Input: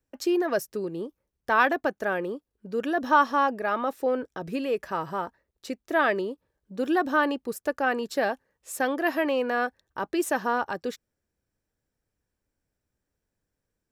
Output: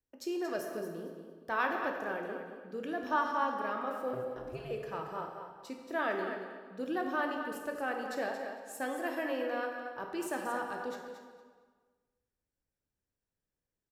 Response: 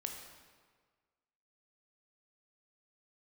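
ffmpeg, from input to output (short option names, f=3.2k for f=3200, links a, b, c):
-filter_complex "[0:a]asettb=1/sr,asplit=3[a][b][c];[a]atrim=end=4.134[d];[b]atrim=start=4.13:end=4.71,asetpts=PTS-STARTPTS,afade=t=in:d=0.004:c=qsin,afade=t=out:st=0.576:d=0.004:c=qsin,aeval=exprs='val(0)*sin(2*PI*130*n/s)':c=same[e];[c]atrim=start=4.706[f];[d][e]acrossfade=d=0.004:c1=hsin:c2=qsin[g];[g][f]acrossfade=d=0.004:c1=qsin:c2=hsin,aecho=1:1:228|456|684:0.355|0.0674|0.0128[h];[1:a]atrim=start_sample=2205[i];[h][i]afir=irnorm=-1:irlink=0,volume=-8.5dB"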